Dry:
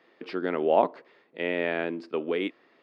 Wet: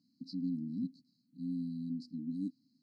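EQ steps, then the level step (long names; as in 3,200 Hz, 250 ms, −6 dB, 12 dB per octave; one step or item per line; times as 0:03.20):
linear-phase brick-wall band-stop 290–3,900 Hz
high-shelf EQ 4,400 Hz −5.5 dB
+1.5 dB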